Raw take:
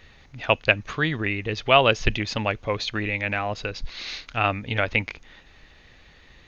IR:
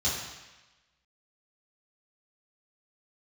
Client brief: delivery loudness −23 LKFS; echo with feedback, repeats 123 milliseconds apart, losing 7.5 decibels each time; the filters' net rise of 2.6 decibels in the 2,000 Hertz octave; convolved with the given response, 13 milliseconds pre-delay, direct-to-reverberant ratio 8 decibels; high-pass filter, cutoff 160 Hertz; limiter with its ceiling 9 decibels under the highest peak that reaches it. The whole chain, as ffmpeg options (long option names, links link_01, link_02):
-filter_complex "[0:a]highpass=160,equalizer=frequency=2000:width_type=o:gain=3.5,alimiter=limit=-8.5dB:level=0:latency=1,aecho=1:1:123|246|369|492|615:0.422|0.177|0.0744|0.0312|0.0131,asplit=2[link_01][link_02];[1:a]atrim=start_sample=2205,adelay=13[link_03];[link_02][link_03]afir=irnorm=-1:irlink=0,volume=-17dB[link_04];[link_01][link_04]amix=inputs=2:normalize=0,volume=1dB"